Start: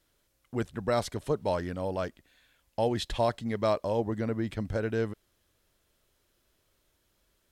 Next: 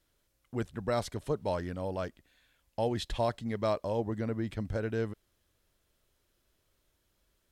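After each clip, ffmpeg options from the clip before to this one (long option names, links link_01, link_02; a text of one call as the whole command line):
ffmpeg -i in.wav -af "lowshelf=frequency=130:gain=3.5,volume=-3.5dB" out.wav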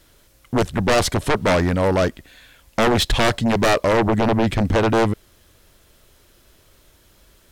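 ffmpeg -i in.wav -af "aeval=exprs='(tanh(15.8*val(0)+0.75)-tanh(0.75))/15.8':channel_layout=same,aeval=exprs='0.0944*sin(PI/2*4.47*val(0)/0.0944)':channel_layout=same,volume=8dB" out.wav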